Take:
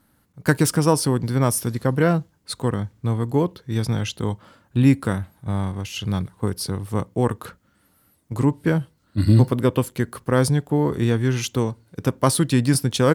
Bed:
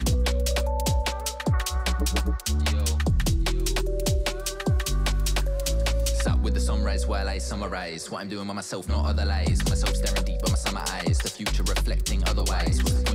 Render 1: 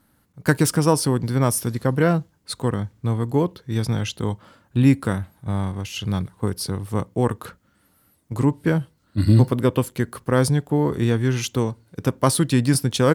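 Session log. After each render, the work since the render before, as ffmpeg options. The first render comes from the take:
ffmpeg -i in.wav -af anull out.wav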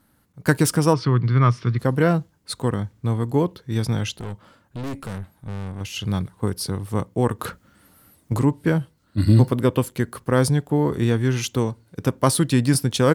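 ffmpeg -i in.wav -filter_complex "[0:a]asplit=3[link_01][link_02][link_03];[link_01]afade=type=out:start_time=0.93:duration=0.02[link_04];[link_02]highpass=100,equalizer=frequency=120:width_type=q:width=4:gain=9,equalizer=frequency=260:width_type=q:width=4:gain=-4,equalizer=frequency=550:width_type=q:width=4:gain=-8,equalizer=frequency=800:width_type=q:width=4:gain=-9,equalizer=frequency=1200:width_type=q:width=4:gain=9,equalizer=frequency=2100:width_type=q:width=4:gain=5,lowpass=frequency=4200:width=0.5412,lowpass=frequency=4200:width=1.3066,afade=type=in:start_time=0.93:duration=0.02,afade=type=out:start_time=1.78:duration=0.02[link_05];[link_03]afade=type=in:start_time=1.78:duration=0.02[link_06];[link_04][link_05][link_06]amix=inputs=3:normalize=0,asettb=1/sr,asplit=3[link_07][link_08][link_09];[link_07]atrim=end=4.174[link_10];[link_08]atrim=start=4.17:end=5.81,asetpts=PTS-STARTPTS,afade=type=in:duration=0.004:curve=qsin,afade=type=out:start_time=1.636:duration=0.004:curve=qsin,aeval=exprs='(tanh(25.1*val(0)+0.5)-tanh(0.5))/25.1':channel_layout=same[link_11];[link_09]atrim=start=5.806[link_12];[link_10][link_11]acrossfade=duration=0.004:curve1=hsin:curve2=qsin[link_13];[link_13][link_12]acrossfade=duration=0.004:curve1=qsin:curve2=hsin,asettb=1/sr,asplit=3[link_14][link_15][link_16];[link_14]atrim=end=7.394[link_17];[link_15]atrim=start=7.39:end=8.39,asetpts=PTS-STARTPTS,afade=type=in:duration=0.004:curve=qsin,afade=type=out:start_time=0.996:duration=0.004:curve=qsin,acontrast=77[link_18];[link_16]atrim=start=8.386[link_19];[link_17][link_18]acrossfade=duration=0.004:curve1=hsin:curve2=qsin[link_20];[link_20][link_19]acrossfade=duration=0.004:curve1=qsin:curve2=hsin" out.wav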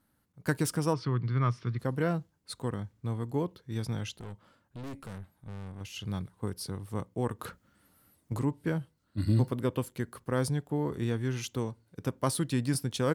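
ffmpeg -i in.wav -af "volume=-11dB" out.wav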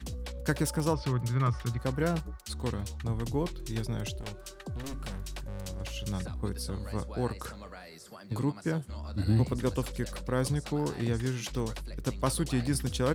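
ffmpeg -i in.wav -i bed.wav -filter_complex "[1:a]volume=-15.5dB[link_01];[0:a][link_01]amix=inputs=2:normalize=0" out.wav

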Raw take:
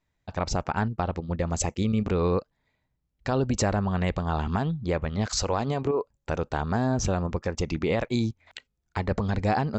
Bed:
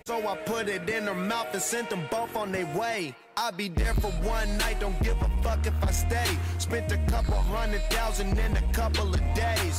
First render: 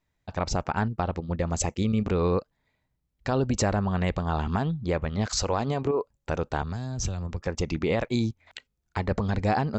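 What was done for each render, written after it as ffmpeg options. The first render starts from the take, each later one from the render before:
ffmpeg -i in.wav -filter_complex "[0:a]asettb=1/sr,asplit=3[link_01][link_02][link_03];[link_01]atrim=end=6.624[link_04];[link_02]atrim=start=6.62:end=7.47,asetpts=PTS-STARTPTS,afade=type=in:duration=0.004:curve=qsin,afade=type=out:start_time=0.846:duration=0.004:curve=qsin,acrossover=split=130|3000[link_05][link_06][link_07];[link_06]acompressor=threshold=-36dB:ratio=6:attack=3.2:release=140:knee=2.83:detection=peak[link_08];[link_05][link_08][link_07]amix=inputs=3:normalize=0[link_09];[link_03]atrim=start=7.466[link_10];[link_04][link_09]acrossfade=duration=0.004:curve1=hsin:curve2=qsin[link_11];[link_11][link_10]acrossfade=duration=0.004:curve1=qsin:curve2=hsin" out.wav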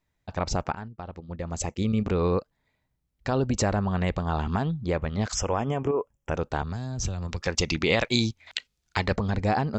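ffmpeg -i in.wav -filter_complex "[0:a]asplit=3[link_01][link_02][link_03];[link_01]afade=type=out:start_time=5.33:duration=0.02[link_04];[link_02]asuperstop=centerf=4200:order=12:qfactor=2.6,afade=type=in:start_time=5.33:duration=0.02,afade=type=out:start_time=6.34:duration=0.02[link_05];[link_03]afade=type=in:start_time=6.34:duration=0.02[link_06];[link_04][link_05][link_06]amix=inputs=3:normalize=0,asettb=1/sr,asplit=3[link_07][link_08][link_09];[link_07]atrim=end=7.224[link_10];[link_08]atrim=start=7.22:end=9.16,asetpts=PTS-STARTPTS,afade=type=in:duration=0.004:curve=qsin,afade=type=out:start_time=1.936:duration=0.004:curve=qsin,equalizer=frequency=4300:width=0.41:gain=12.5[link_11];[link_09]atrim=start=9.156[link_12];[link_10][link_11]acrossfade=duration=0.004:curve1=hsin:curve2=qsin[link_13];[link_13][link_12]acrossfade=duration=0.004:curve1=qsin:curve2=hsin,asplit=2[link_14][link_15];[link_14]atrim=end=0.75,asetpts=PTS-STARTPTS,afade=type=out:start_time=0.746:duration=0.004:curve=hsin:silence=0.237137[link_16];[link_15]atrim=start=0.75,asetpts=PTS-STARTPTS,afade=type=in:duration=1.14:curve=qua:silence=0.237137[link_17];[link_16][link_17]concat=n=2:v=0:a=1" out.wav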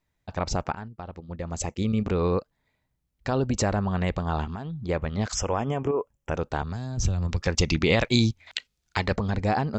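ffmpeg -i in.wav -filter_complex "[0:a]asplit=3[link_01][link_02][link_03];[link_01]afade=type=out:start_time=4.44:duration=0.02[link_04];[link_02]acompressor=threshold=-30dB:ratio=6:attack=3.2:release=140:knee=1:detection=peak,afade=type=in:start_time=4.44:duration=0.02,afade=type=out:start_time=4.88:duration=0.02[link_05];[link_03]afade=type=in:start_time=4.88:duration=0.02[link_06];[link_04][link_05][link_06]amix=inputs=3:normalize=0,asettb=1/sr,asplit=3[link_07][link_08][link_09];[link_07]atrim=end=6.974[link_10];[link_08]atrim=start=6.97:end=8.43,asetpts=PTS-STARTPTS,afade=type=in:duration=0.004:curve=qsin,afade=type=out:start_time=1.456:duration=0.004:curve=qsin,lowshelf=frequency=230:gain=7[link_11];[link_09]atrim=start=8.426[link_12];[link_10][link_11]acrossfade=duration=0.004:curve1=hsin:curve2=qsin[link_13];[link_13][link_12]acrossfade=duration=0.004:curve1=qsin:curve2=hsin" out.wav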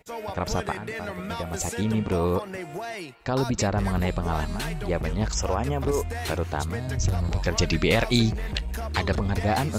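ffmpeg -i in.wav -i bed.wav -filter_complex "[1:a]volume=-5dB[link_01];[0:a][link_01]amix=inputs=2:normalize=0" out.wav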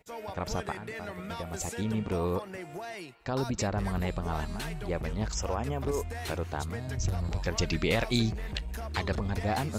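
ffmpeg -i in.wav -af "volume=-6dB" out.wav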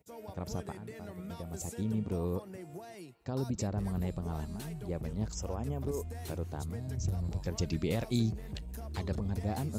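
ffmpeg -i in.wav -af "highpass=73,equalizer=frequency=1900:width=0.33:gain=-14" out.wav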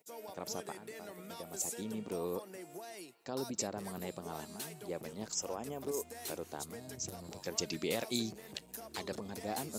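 ffmpeg -i in.wav -af "highpass=310,highshelf=frequency=3100:gain=7.5" out.wav

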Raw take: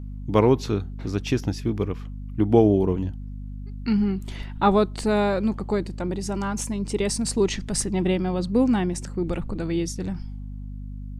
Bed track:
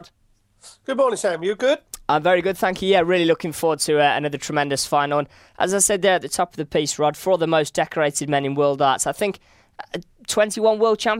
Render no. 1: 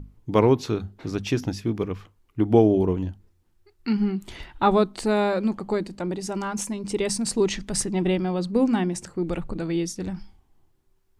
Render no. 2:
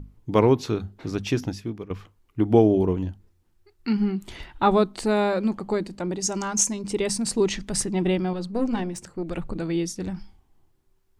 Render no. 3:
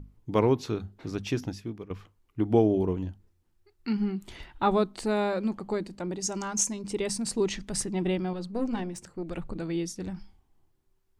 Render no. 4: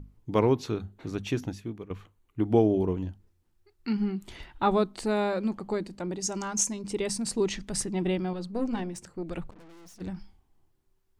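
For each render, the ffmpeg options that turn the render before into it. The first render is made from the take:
ffmpeg -i in.wav -af "bandreject=frequency=50:width_type=h:width=6,bandreject=frequency=100:width_type=h:width=6,bandreject=frequency=150:width_type=h:width=6,bandreject=frequency=200:width_type=h:width=6,bandreject=frequency=250:width_type=h:width=6" out.wav
ffmpeg -i in.wav -filter_complex "[0:a]asettb=1/sr,asplit=3[link_01][link_02][link_03];[link_01]atrim=end=6.224[link_04];[link_02]atrim=start=6.22:end=6.82,asetpts=PTS-STARTPTS,afade=type=in:duration=0.004:curve=qsin,afade=type=out:start_time=0.596:duration=0.004:curve=qsin,equalizer=frequency=6500:width_type=o:width=0.64:gain=14.5[link_05];[link_03]atrim=start=6.816[link_06];[link_04][link_05]acrossfade=duration=0.004:curve1=hsin:curve2=qsin[link_07];[link_07][link_06]acrossfade=duration=0.004:curve1=qsin:curve2=hsin,asettb=1/sr,asplit=3[link_08][link_09][link_10];[link_08]atrim=end=8.334[link_11];[link_09]atrim=start=8.33:end=9.35,asetpts=PTS-STARTPTS,afade=type=in:duration=0.004:curve=qsin,afade=type=out:start_time=1.016:duration=0.004:curve=qsin,aeval=exprs='(tanh(7.08*val(0)+0.65)-tanh(0.65))/7.08':channel_layout=same[link_12];[link_10]atrim=start=9.346[link_13];[link_11][link_12]acrossfade=duration=0.004:curve1=hsin:curve2=qsin[link_14];[link_14][link_13]acrossfade=duration=0.004:curve1=qsin:curve2=hsin,asplit=2[link_15][link_16];[link_15]atrim=end=1.9,asetpts=PTS-STARTPTS,afade=type=out:start_time=1.38:duration=0.52:silence=0.199526[link_17];[link_16]atrim=start=1.9,asetpts=PTS-STARTPTS,afade=type=in:duration=0.004:curve=hsin:silence=0.199526[link_18];[link_17][link_18]concat=n=2:v=0:a=1" out.wav
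ffmpeg -i in.wav -af "volume=-5dB" out.wav
ffmpeg -i in.wav -filter_complex "[0:a]asettb=1/sr,asplit=3[link_01][link_02][link_03];[link_01]atrim=end=0.674[link_04];[link_02]atrim=start=0.67:end=2.43,asetpts=PTS-STARTPTS,afade=type=in:duration=0.004:curve=qsin,afade=type=out:start_time=1.756:duration=0.004:curve=qsin,equalizer=frequency=5100:width=6.9:gain=-9[link_05];[link_03]atrim=start=2.426[link_06];[link_04][link_05]acrossfade=duration=0.004:curve1=hsin:curve2=qsin[link_07];[link_07][link_06]acrossfade=duration=0.004:curve1=qsin:curve2=hsin,asplit=3[link_08][link_09][link_10];[link_08]afade=type=out:start_time=9.49:duration=0.02[link_11];[link_09]aeval=exprs='(tanh(355*val(0)+0.8)-tanh(0.8))/355':channel_layout=same,afade=type=in:start_time=9.49:duration=0.02,afade=type=out:start_time=10:duration=0.02[link_12];[link_10]afade=type=in:start_time=10:duration=0.02[link_13];[link_11][link_12][link_13]amix=inputs=3:normalize=0" out.wav

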